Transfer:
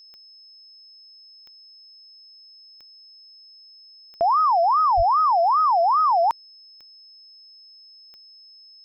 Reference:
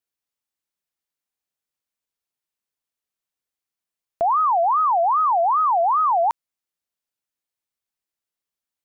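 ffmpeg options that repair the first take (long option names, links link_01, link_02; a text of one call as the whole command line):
ffmpeg -i in.wav -filter_complex "[0:a]adeclick=threshold=4,bandreject=frequency=5200:width=30,asplit=3[link_01][link_02][link_03];[link_01]afade=type=out:start_time=4.96:duration=0.02[link_04];[link_02]highpass=frequency=140:width=0.5412,highpass=frequency=140:width=1.3066,afade=type=in:start_time=4.96:duration=0.02,afade=type=out:start_time=5.08:duration=0.02[link_05];[link_03]afade=type=in:start_time=5.08:duration=0.02[link_06];[link_04][link_05][link_06]amix=inputs=3:normalize=0" out.wav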